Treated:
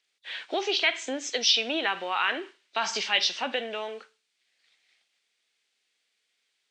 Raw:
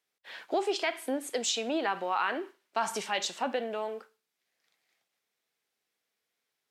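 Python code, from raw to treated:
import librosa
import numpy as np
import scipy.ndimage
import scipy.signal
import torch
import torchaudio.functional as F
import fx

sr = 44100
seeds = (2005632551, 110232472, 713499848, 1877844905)

y = fx.freq_compress(x, sr, knee_hz=3400.0, ratio=1.5)
y = fx.weighting(y, sr, curve='D')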